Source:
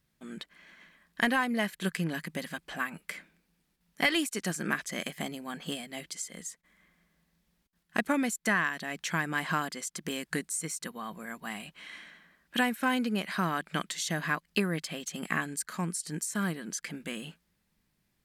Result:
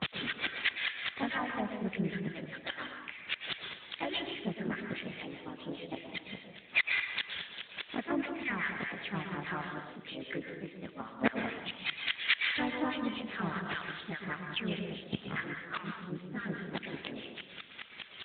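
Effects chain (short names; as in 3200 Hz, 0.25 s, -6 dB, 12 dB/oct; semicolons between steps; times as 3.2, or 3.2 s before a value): switching spikes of -30 dBFS; gate -38 dBFS, range -27 dB; thinning echo 0.134 s, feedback 41%, high-pass 280 Hz, level -16 dB; in parallel at -8 dB: requantised 6-bit, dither none; on the sum: harmonic tremolo 4.9 Hz, depth 100%, crossover 1100 Hz; flipped gate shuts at -30 dBFS, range -39 dB; harmoniser +3 st -1 dB; plate-style reverb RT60 0.97 s, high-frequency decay 0.85×, pre-delay 0.1 s, DRR 3.5 dB; maximiser +34.5 dB; gain -2.5 dB; AMR-NB 12.2 kbps 8000 Hz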